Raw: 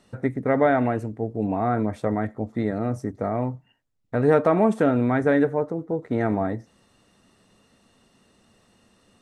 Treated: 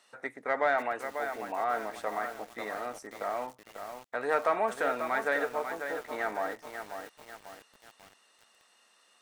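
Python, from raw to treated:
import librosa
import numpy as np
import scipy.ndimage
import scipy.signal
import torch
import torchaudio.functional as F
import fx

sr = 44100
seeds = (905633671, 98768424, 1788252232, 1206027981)

p1 = scipy.signal.sosfilt(scipy.signal.butter(2, 920.0, 'highpass', fs=sr, output='sos'), x)
p2 = 10.0 ** (-24.0 / 20.0) * np.tanh(p1 / 10.0 ** (-24.0 / 20.0))
p3 = p1 + (p2 * librosa.db_to_amplitude(-6.5))
p4 = fx.echo_crushed(p3, sr, ms=542, feedback_pct=55, bits=7, wet_db=-7.0)
y = p4 * librosa.db_to_amplitude(-3.0)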